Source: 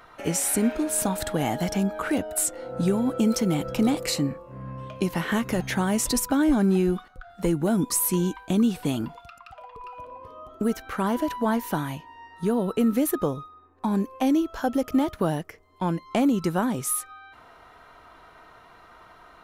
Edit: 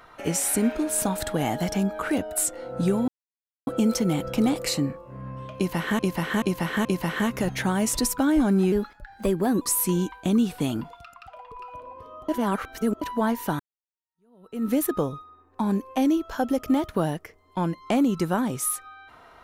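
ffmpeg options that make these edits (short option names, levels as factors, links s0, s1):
-filter_complex "[0:a]asplit=10[s0][s1][s2][s3][s4][s5][s6][s7][s8][s9];[s0]atrim=end=3.08,asetpts=PTS-STARTPTS,afade=t=out:st=3.076:d=0.004:c=hsin,apad=pad_dur=0.59[s10];[s1]atrim=start=3.08:end=5.402,asetpts=PTS-STARTPTS,afade=t=in:d=0.004:c=hsin[s11];[s2]atrim=start=4.968:end=5.402[s12];[s3]atrim=start=4.968:end=5.402[s13];[s4]atrim=start=4.968:end=6.844[s14];[s5]atrim=start=6.84:end=7.86,asetpts=PTS-STARTPTS,asetrate=50274,aresample=44100[s15];[s6]atrim=start=7.856:end=10.532[s16];[s7]atrim=start=10.528:end=11.262,asetpts=PTS-STARTPTS,areverse[s17];[s8]atrim=start=11.258:end=11.84,asetpts=PTS-STARTPTS,afade=t=out:st=0.578:d=0.004:c=hsin[s18];[s9]atrim=start=11.84,asetpts=PTS-STARTPTS,afade=t=in:d=1.09:c=exp[s19];[s10][s11]concat=n=2:v=0:a=1[s20];[s20][s12]acrossfade=d=0.004:c1=hsin:c2=hsin[s21];[s21][s13]acrossfade=d=0.004:c1=hsin:c2=hsin[s22];[s22][s14]acrossfade=d=0.004:c1=hsin:c2=hsin[s23];[s23][s15]acrossfade=d=0.004:c1=hsin:c2=hsin[s24];[s24][s16]acrossfade=d=0.004:c1=hsin:c2=hsin[s25];[s25][s17]acrossfade=d=0.004:c1=hsin:c2=hsin[s26];[s18][s19]concat=n=2:v=0:a=1[s27];[s26][s27]acrossfade=d=0.004:c1=hsin:c2=hsin"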